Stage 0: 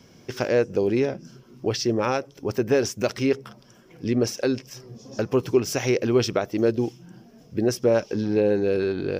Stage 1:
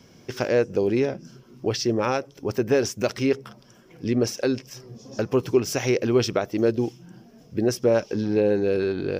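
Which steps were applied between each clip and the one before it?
nothing audible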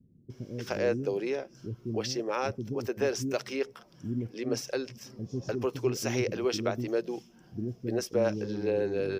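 bands offset in time lows, highs 0.3 s, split 300 Hz; gain -6 dB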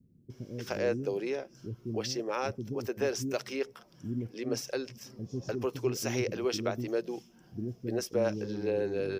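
high shelf 8700 Hz +4.5 dB; gain -2 dB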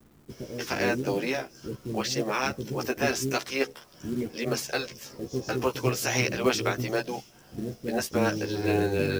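spectral limiter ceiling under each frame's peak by 14 dB; chorus voices 2, 0.23 Hz, delay 14 ms, depth 1.7 ms; companded quantiser 6-bit; gain +8 dB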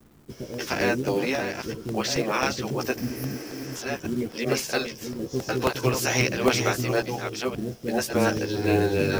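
reverse delay 0.581 s, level -7 dB; spectral repair 3.01–3.73, 270–10000 Hz before; crackling interface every 0.27 s, samples 64, repeat, from 0.54; gain +2.5 dB

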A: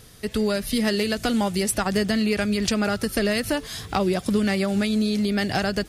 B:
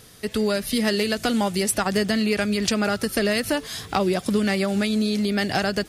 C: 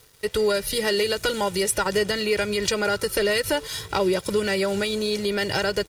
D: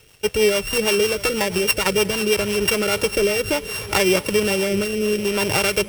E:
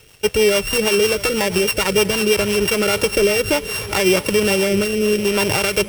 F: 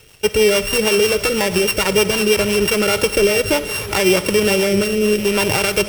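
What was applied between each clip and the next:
low shelf 100 Hz -9.5 dB; gain +1.5 dB
comb 2.1 ms, depth 81%; in parallel at +1 dB: limiter -15.5 dBFS, peak gain reduction 8.5 dB; on the sum: crossover distortion -39 dBFS; gain -6 dB
sample sorter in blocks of 16 samples; swung echo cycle 1.076 s, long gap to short 1.5:1, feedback 52%, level -19 dB; rotary speaker horn 6.3 Hz, later 0.6 Hz, at 2.36; gain +6 dB
limiter -9 dBFS, peak gain reduction 7.5 dB; gain +3.5 dB
digital reverb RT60 0.89 s, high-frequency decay 0.9×, pre-delay 15 ms, DRR 13.5 dB; gain +1 dB

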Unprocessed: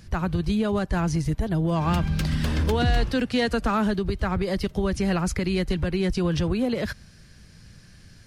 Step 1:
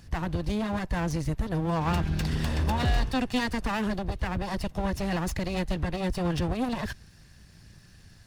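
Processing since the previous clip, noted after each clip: minimum comb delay 1.1 ms; gain -2.5 dB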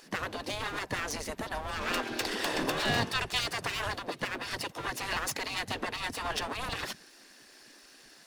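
spectral gate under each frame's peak -15 dB weak; gain +5 dB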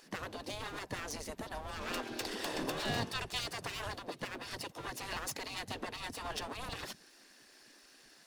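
dynamic EQ 1800 Hz, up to -4 dB, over -46 dBFS, Q 0.75; gain -5 dB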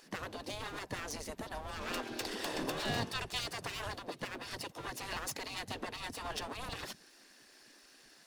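nothing audible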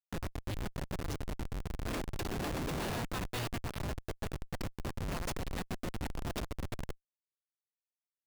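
rattling part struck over -39 dBFS, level -31 dBFS; Schmitt trigger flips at -35 dBFS; gain +6 dB

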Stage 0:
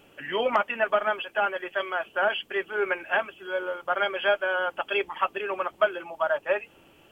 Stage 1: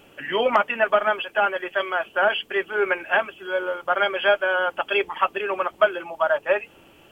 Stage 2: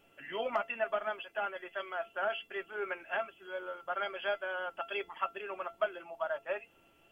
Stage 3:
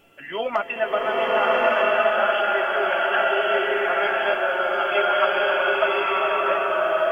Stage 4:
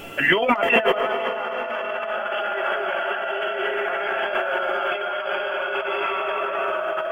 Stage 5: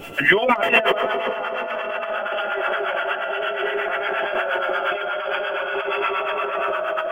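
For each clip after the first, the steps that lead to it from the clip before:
de-hum 146 Hz, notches 3; gain +4.5 dB
resonator 680 Hz, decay 0.19 s, harmonics all, mix 80%; gain -2.5 dB
bloom reverb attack 1.17 s, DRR -7 dB; gain +9 dB
negative-ratio compressor -33 dBFS, ratio -1; gain +8.5 dB
harmonic tremolo 8.5 Hz, depth 70%, crossover 790 Hz; gain +4.5 dB

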